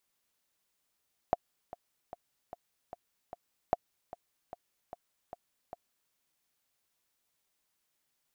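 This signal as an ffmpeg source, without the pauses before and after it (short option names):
-f lavfi -i "aevalsrc='pow(10,(-12.5-17.5*gte(mod(t,6*60/150),60/150))/20)*sin(2*PI*703*mod(t,60/150))*exp(-6.91*mod(t,60/150)/0.03)':d=4.8:s=44100"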